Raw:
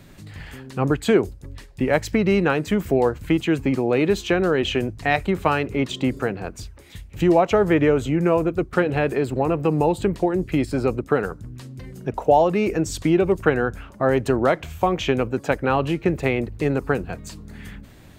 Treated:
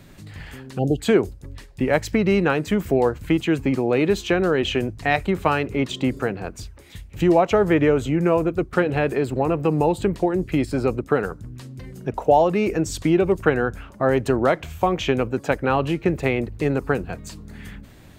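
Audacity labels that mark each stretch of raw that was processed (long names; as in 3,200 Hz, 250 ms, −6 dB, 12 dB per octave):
0.780000	0.990000	time-frequency box erased 800–2,700 Hz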